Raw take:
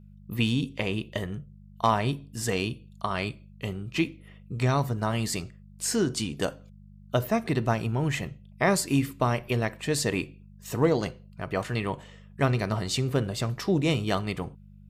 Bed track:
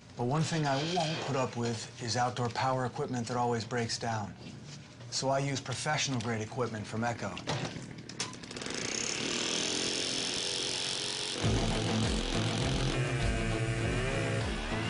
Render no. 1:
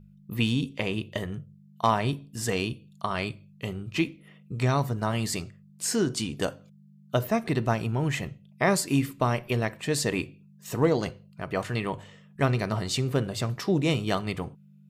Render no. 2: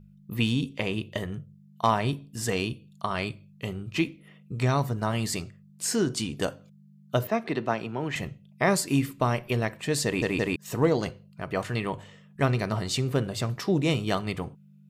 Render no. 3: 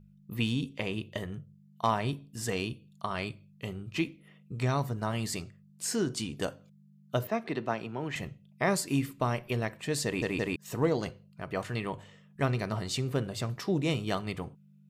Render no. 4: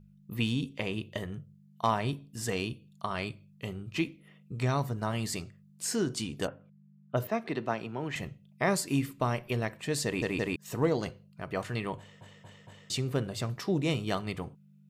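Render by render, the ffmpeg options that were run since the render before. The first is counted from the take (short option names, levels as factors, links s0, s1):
-af "bandreject=f=50:t=h:w=4,bandreject=f=100:t=h:w=4"
-filter_complex "[0:a]asettb=1/sr,asplit=3[s0][s1][s2];[s0]atrim=end=7.274[s3];[s1]atrim=start=7.27:end=8.16,asetpts=PTS-STARTPTS,afade=t=in:d=0.004:c=qsin,afade=t=out:st=0.886:d=0.004:c=qsin,acrossover=split=200 5200:gain=0.2 1 0.2[s4][s5][s6];[s4][s5][s6]amix=inputs=3:normalize=0[s7];[s2]atrim=start=8.156[s8];[s3][s7]acrossfade=d=0.004:c1=hsin:c2=qsin[s9];[s9][s8]acrossfade=d=0.004:c1=qsin:c2=hsin,asplit=4[s10][s11][s12][s13];[s10]atrim=end=10.222[s14];[s11]atrim=start=10.048:end=10.222[s15];[s12]atrim=start=10.048:end=10.222[s16];[s13]atrim=start=10.558[s17];[s14][s15]acrossfade=d=0.004:c1=hsin:c2=hsin[s18];[s18][s16]acrossfade=d=0.004:c1=hsin:c2=hsin[s19];[s19][s17]acrossfade=d=0.004:c1=hsin:c2=hsin"
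-af "volume=0.596"
-filter_complex "[0:a]asplit=3[s0][s1][s2];[s0]afade=t=out:st=6.46:d=0.02[s3];[s1]lowpass=f=2400:w=0.5412,lowpass=f=2400:w=1.3066,afade=t=in:st=6.46:d=0.02,afade=t=out:st=7.16:d=0.02[s4];[s2]afade=t=in:st=7.16:d=0.02[s5];[s3][s4][s5]amix=inputs=3:normalize=0,asplit=5[s6][s7][s8][s9][s10];[s6]atrim=end=12.212[s11];[s7]atrim=start=11.978:end=12.212[s12];[s8]atrim=start=11.978:end=12.212[s13];[s9]atrim=start=11.978:end=12.212[s14];[s10]atrim=start=12.898[s15];[s11][s12]acrossfade=d=0.004:c1=hsin:c2=hsin[s16];[s16][s13]acrossfade=d=0.004:c1=hsin:c2=hsin[s17];[s17][s14]acrossfade=d=0.004:c1=hsin:c2=hsin[s18];[s18][s15]acrossfade=d=0.004:c1=hsin:c2=hsin"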